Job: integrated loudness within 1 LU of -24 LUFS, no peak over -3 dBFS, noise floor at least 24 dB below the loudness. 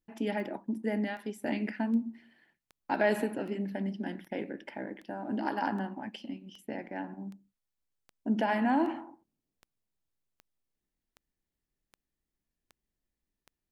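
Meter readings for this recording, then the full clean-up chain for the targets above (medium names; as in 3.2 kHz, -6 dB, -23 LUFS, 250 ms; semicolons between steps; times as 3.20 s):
clicks found 18; loudness -33.5 LUFS; peak level -15.0 dBFS; loudness target -24.0 LUFS
-> de-click; trim +9.5 dB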